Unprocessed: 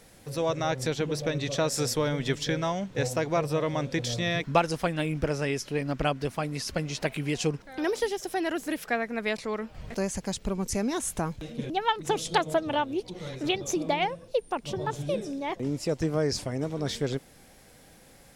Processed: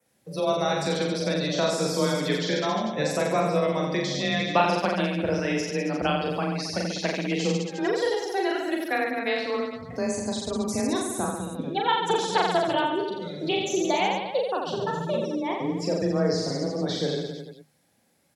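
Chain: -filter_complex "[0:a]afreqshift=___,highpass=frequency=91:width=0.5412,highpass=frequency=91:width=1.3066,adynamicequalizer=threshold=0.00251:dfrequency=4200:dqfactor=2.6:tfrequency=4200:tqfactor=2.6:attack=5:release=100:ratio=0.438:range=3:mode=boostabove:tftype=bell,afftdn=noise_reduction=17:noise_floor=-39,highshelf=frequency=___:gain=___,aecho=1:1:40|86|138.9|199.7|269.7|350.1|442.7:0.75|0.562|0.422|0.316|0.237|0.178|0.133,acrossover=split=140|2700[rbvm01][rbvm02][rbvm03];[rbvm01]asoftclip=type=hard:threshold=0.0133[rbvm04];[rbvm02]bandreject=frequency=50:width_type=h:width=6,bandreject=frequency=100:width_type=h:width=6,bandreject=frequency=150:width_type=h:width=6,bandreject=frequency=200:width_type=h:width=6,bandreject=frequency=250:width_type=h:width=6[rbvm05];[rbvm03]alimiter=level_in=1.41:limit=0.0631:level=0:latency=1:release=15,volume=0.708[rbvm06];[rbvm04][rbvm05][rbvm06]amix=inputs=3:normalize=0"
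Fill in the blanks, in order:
23, 11000, 4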